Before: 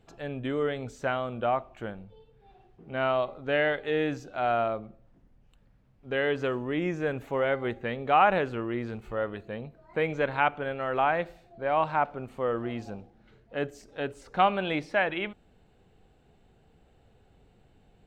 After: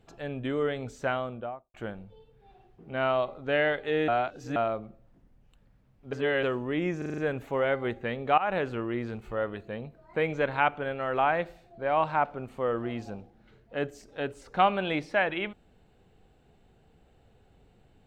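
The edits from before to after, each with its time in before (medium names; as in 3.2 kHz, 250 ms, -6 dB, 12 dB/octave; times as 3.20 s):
1.11–1.74 s: studio fade out
4.08–4.56 s: reverse
6.13–6.43 s: reverse
6.98 s: stutter 0.04 s, 6 plays
8.18–8.56 s: fade in equal-power, from -17.5 dB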